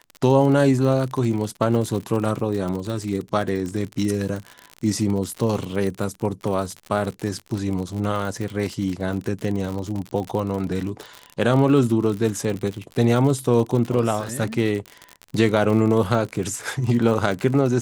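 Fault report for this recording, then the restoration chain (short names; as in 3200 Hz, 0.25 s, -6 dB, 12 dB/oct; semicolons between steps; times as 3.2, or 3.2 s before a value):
crackle 56/s -26 dBFS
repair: de-click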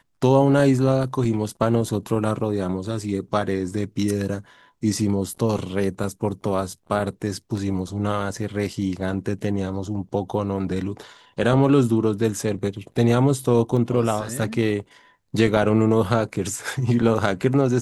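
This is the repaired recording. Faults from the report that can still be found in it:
none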